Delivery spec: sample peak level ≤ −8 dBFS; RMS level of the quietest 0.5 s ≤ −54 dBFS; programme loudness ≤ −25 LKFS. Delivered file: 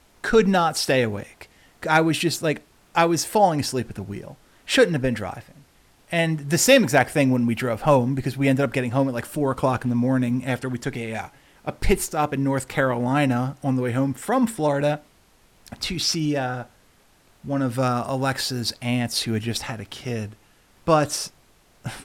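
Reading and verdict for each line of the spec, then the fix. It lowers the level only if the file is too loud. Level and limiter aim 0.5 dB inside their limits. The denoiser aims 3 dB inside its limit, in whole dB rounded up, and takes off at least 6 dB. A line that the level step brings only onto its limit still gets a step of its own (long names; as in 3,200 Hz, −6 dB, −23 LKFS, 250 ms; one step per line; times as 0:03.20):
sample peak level −5.5 dBFS: out of spec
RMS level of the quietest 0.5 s −57 dBFS: in spec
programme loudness −22.5 LKFS: out of spec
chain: level −3 dB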